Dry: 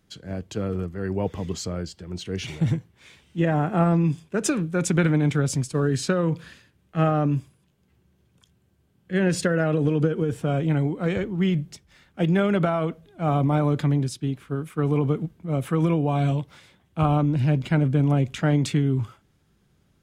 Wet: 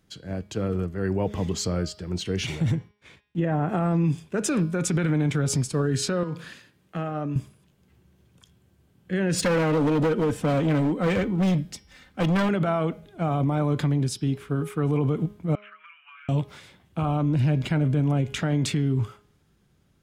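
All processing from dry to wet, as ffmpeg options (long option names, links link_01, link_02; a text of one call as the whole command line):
ffmpeg -i in.wav -filter_complex "[0:a]asettb=1/sr,asplit=3[link_01][link_02][link_03];[link_01]atrim=end=2.754[link_04];[link_02]atrim=start=2.75:end=3.69,asetpts=PTS-STARTPTS,afade=type=in:duration=0.004:curve=qsin,afade=type=out:start_time=0.936:duration=0.004:curve=qsin,highshelf=frequency=3200:gain=-11,agate=range=-25dB:threshold=-56dB:ratio=16:release=100:detection=peak[link_05];[link_03]atrim=start=3.686[link_06];[link_04][link_05]acrossfade=duration=0.004:curve1=hsin:curve2=qsin[link_07];[link_07][link_06]acrossfade=duration=0.004:curve1=qsin:curve2=hsin,asettb=1/sr,asplit=3[link_08][link_09][link_10];[link_08]atrim=end=6.234[link_11];[link_09]atrim=start=6.23:end=7.36,asetpts=PTS-STARTPTS,afade=type=in:duration=0.004:curve=qsin,afade=type=out:start_time=1.126:duration=0.004:curve=qsin,highpass=140,acompressor=threshold=-30dB:ratio=6:attack=3.2:release=140:knee=1:detection=peak[link_12];[link_10]atrim=start=7.356[link_13];[link_11][link_12]acrossfade=duration=0.004:curve1=hsin:curve2=qsin[link_14];[link_14][link_13]acrossfade=duration=0.004:curve1=qsin:curve2=hsin,asettb=1/sr,asplit=3[link_15][link_16][link_17];[link_15]atrim=end=9.384[link_18];[link_16]atrim=start=9.38:end=12.49,asetpts=PTS-STARTPTS,afade=type=in:duration=0.004:curve=qsin,afade=type=out:start_time=3.106:duration=0.004:curve=qsin,aecho=1:1:3.9:0.41,atrim=end_sample=137151,asoftclip=type=hard:threshold=-23dB[link_19];[link_17]atrim=start=12.486[link_20];[link_18][link_19]acrossfade=duration=0.004:curve1=hsin:curve2=qsin[link_21];[link_21][link_20]acrossfade=duration=0.004:curve1=qsin:curve2=hsin,asettb=1/sr,asplit=3[link_22][link_23][link_24];[link_22]atrim=end=15.554[link_25];[link_23]atrim=start=15.55:end=16.29,asetpts=PTS-STARTPTS,afade=type=in:duration=0.004:curve=qsin,afade=type=out:start_time=0.736:duration=0.004:curve=qsin,asuperpass=centerf=1900:order=12:qfactor=1.1,acompressor=threshold=-48dB:ratio=12:attack=3.2:release=140:knee=1:detection=peak[link_26];[link_24]atrim=start=16.286[link_27];[link_25][link_26]acrossfade=duration=0.004:curve1=hsin:curve2=qsin[link_28];[link_28][link_27]acrossfade=duration=0.004:curve1=qsin:curve2=hsin,dynaudnorm=framelen=100:gausssize=21:maxgain=4dB,bandreject=frequency=207.3:width_type=h:width=4,bandreject=frequency=414.6:width_type=h:width=4,bandreject=frequency=621.9:width_type=h:width=4,bandreject=frequency=829.2:width_type=h:width=4,bandreject=frequency=1036.5:width_type=h:width=4,bandreject=frequency=1243.8:width_type=h:width=4,bandreject=frequency=1451.1:width_type=h:width=4,bandreject=frequency=1658.4:width_type=h:width=4,bandreject=frequency=1865.7:width_type=h:width=4,bandreject=frequency=2073:width_type=h:width=4,bandreject=frequency=2280.3:width_type=h:width=4,bandreject=frequency=2487.6:width_type=h:width=4,bandreject=frequency=2694.9:width_type=h:width=4,bandreject=frequency=2902.2:width_type=h:width=4,bandreject=frequency=3109.5:width_type=h:width=4,bandreject=frequency=3316.8:width_type=h:width=4,bandreject=frequency=3524.1:width_type=h:width=4,bandreject=frequency=3731.4:width_type=h:width=4,bandreject=frequency=3938.7:width_type=h:width=4,bandreject=frequency=4146:width_type=h:width=4,bandreject=frequency=4353.3:width_type=h:width=4,bandreject=frequency=4560.6:width_type=h:width=4,bandreject=frequency=4767.9:width_type=h:width=4,bandreject=frequency=4975.2:width_type=h:width=4,bandreject=frequency=5182.5:width_type=h:width=4,bandreject=frequency=5389.8:width_type=h:width=4,bandreject=frequency=5597.1:width_type=h:width=4,alimiter=limit=-16dB:level=0:latency=1:release=83" out.wav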